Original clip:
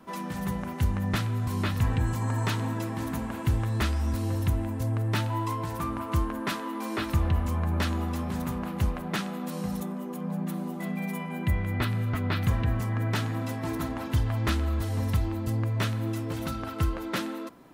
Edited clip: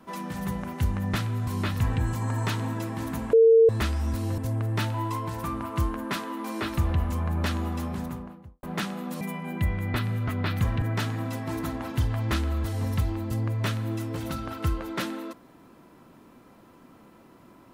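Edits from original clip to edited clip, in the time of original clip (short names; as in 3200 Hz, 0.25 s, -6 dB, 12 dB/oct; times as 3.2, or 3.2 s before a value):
3.33–3.69 bleep 453 Hz -12.5 dBFS
4.38–4.74 cut
8.17–8.99 studio fade out
9.57–11.07 cut
12.68–12.98 cut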